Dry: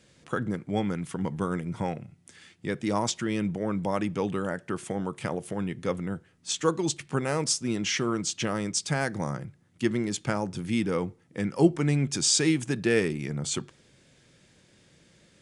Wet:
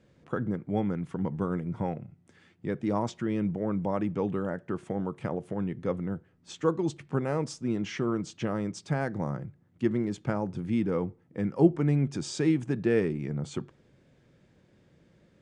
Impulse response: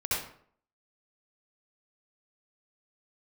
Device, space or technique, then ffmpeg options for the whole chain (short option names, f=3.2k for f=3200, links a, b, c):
through cloth: -af "lowpass=9.2k,highshelf=f=2.2k:g=-17.5"